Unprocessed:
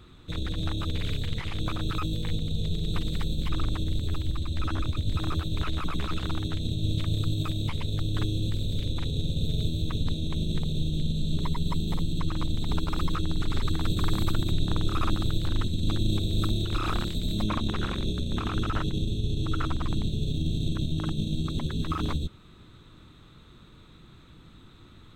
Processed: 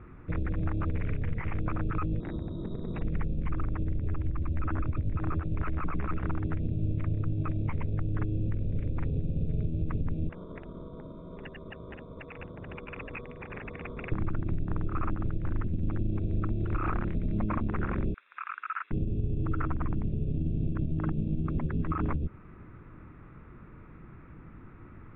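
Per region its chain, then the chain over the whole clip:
2.2–3.02 inverted band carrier 3800 Hz + tilt shelf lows +9 dB, about 670 Hz
10.29–14.12 HPF 1300 Hz 6 dB/oct + inverted band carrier 3800 Hz
18.14–18.91 median filter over 9 samples + HPF 1400 Hz 24 dB/oct + comb 0.8 ms, depth 36%
whole clip: steep low-pass 2300 Hz 48 dB/oct; compressor, threshold -28 dBFS; gain +3 dB

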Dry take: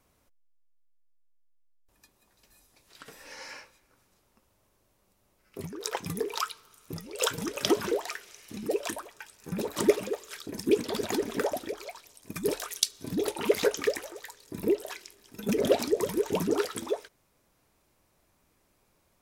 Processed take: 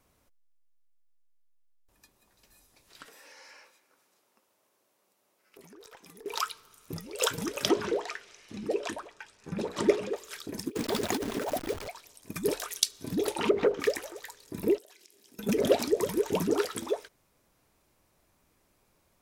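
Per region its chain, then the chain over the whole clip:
3.06–6.26 HPF 320 Hz + compressor 4:1, threshold -49 dBFS + tube stage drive 38 dB, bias 0.25
7.69–10.16 air absorption 73 m + notches 60/120/180/240/300/360/420/480 Hz
10.68–11.88 level-crossing sampler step -37 dBFS + negative-ratio compressor -30 dBFS, ratio -0.5
13.31–13.8 treble ducked by the level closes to 480 Hz, closed at -19 dBFS + notches 50/100/150/200/250/300/350/400/450/500 Hz + sample leveller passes 1
14.78–15.39 HPF 210 Hz + bell 1200 Hz -9.5 dB 1.9 oct + compressor 8:1, threshold -52 dBFS
whole clip: dry

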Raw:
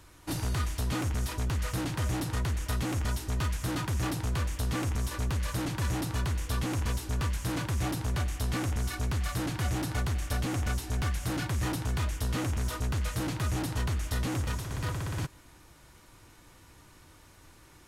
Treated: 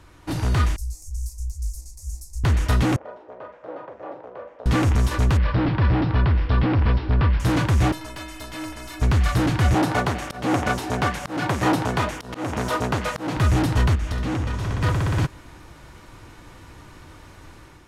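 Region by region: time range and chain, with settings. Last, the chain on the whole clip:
0.76–2.44 inverse Chebyshev band-stop 100–3300 Hz + bell 3700 Hz -7.5 dB 0.37 oct + Doppler distortion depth 0.25 ms
2.96–4.66 ladder band-pass 600 Hz, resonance 65% + doubler 43 ms -8 dB
5.37–7.4 air absorption 230 m + careless resampling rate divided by 4×, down none, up filtered
7.92–9.02 metallic resonator 310 Hz, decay 0.36 s, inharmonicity 0.008 + spectral compressor 2:1
9.74–13.37 HPF 160 Hz + auto swell 0.232 s + bell 720 Hz +6 dB 1.7 oct
13.95–14.82 high shelf 11000 Hz -11 dB + compressor 10:1, threshold -34 dBFS + flutter echo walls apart 11.9 m, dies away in 0.45 s
whole clip: LPF 2900 Hz 6 dB/oct; AGC gain up to 6 dB; gain +6 dB

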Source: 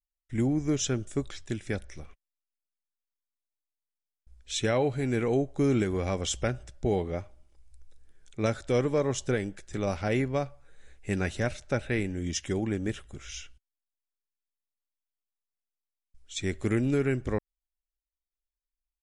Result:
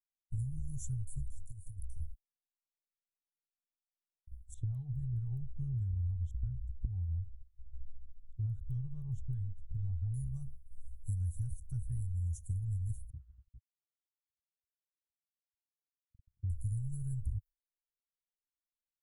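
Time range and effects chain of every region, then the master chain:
1.45–2 fixed phaser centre 440 Hz, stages 4 + compressor 16:1, threshold -38 dBFS
4.54–10.14 high shelf 5200 Hz -10.5 dB + LFO low-pass square 4.8 Hz 830–3400 Hz
13.1–16.5 delta modulation 16 kbps, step -37.5 dBFS + HPF 110 Hz 6 dB/oct
whole clip: inverse Chebyshev band-stop 240–5000 Hz, stop band 50 dB; expander -46 dBFS; compressor 4:1, threshold -45 dBFS; gain +11.5 dB

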